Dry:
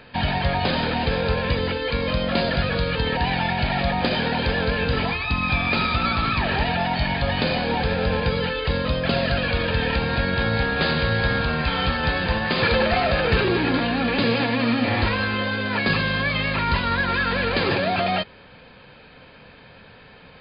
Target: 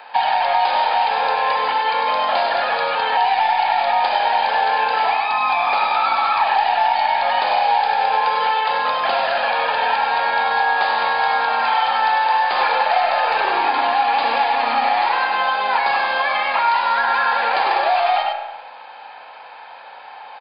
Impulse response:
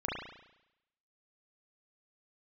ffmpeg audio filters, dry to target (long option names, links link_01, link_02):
-filter_complex "[0:a]highpass=frequency=820:width_type=q:width=7.7,aeval=exprs='0.75*(cos(1*acos(clip(val(0)/0.75,-1,1)))-cos(1*PI/2))+0.00841*(cos(2*acos(clip(val(0)/0.75,-1,1)))-cos(2*PI/2))':channel_layout=same,asplit=2[link_01][link_02];[link_02]adelay=99.13,volume=-6dB,highshelf=frequency=4000:gain=-2.23[link_03];[link_01][link_03]amix=inputs=2:normalize=0,asplit=2[link_04][link_05];[1:a]atrim=start_sample=2205[link_06];[link_05][link_06]afir=irnorm=-1:irlink=0,volume=-7.5dB[link_07];[link_04][link_07]amix=inputs=2:normalize=0,acrossover=split=1700|4400[link_08][link_09][link_10];[link_08]acompressor=threshold=-16dB:ratio=4[link_11];[link_09]acompressor=threshold=-27dB:ratio=4[link_12];[link_10]acompressor=threshold=-39dB:ratio=4[link_13];[link_11][link_12][link_13]amix=inputs=3:normalize=0"